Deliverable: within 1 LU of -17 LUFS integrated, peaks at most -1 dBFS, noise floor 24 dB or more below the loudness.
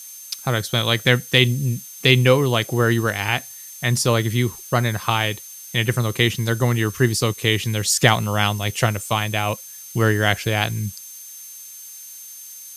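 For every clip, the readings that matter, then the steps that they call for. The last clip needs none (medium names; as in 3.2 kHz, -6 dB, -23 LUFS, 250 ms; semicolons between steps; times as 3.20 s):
steady tone 6.3 kHz; tone level -40 dBFS; noise floor -39 dBFS; noise floor target -44 dBFS; loudness -20.0 LUFS; peak level -1.0 dBFS; loudness target -17.0 LUFS
-> band-stop 6.3 kHz, Q 30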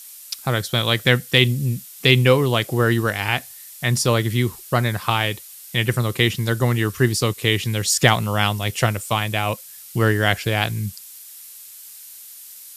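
steady tone not found; noise floor -41 dBFS; noise floor target -44 dBFS
-> noise print and reduce 6 dB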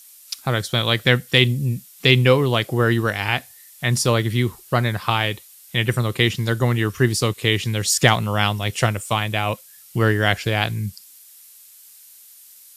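noise floor -47 dBFS; loudness -20.0 LUFS; peak level -1.0 dBFS; loudness target -17.0 LUFS
-> trim +3 dB; peak limiter -1 dBFS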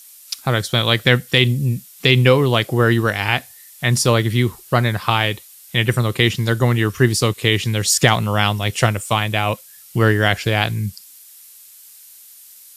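loudness -17.5 LUFS; peak level -1.0 dBFS; noise floor -44 dBFS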